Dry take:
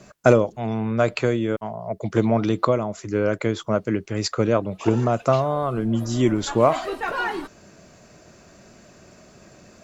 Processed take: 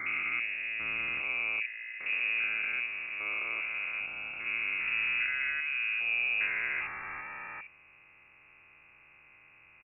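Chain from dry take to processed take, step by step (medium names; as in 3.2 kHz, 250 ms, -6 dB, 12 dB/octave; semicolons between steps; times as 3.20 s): spectrogram pixelated in time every 400 ms; bands offset in time highs, lows 60 ms, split 530 Hz; frequency inversion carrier 2.7 kHz; trim -7 dB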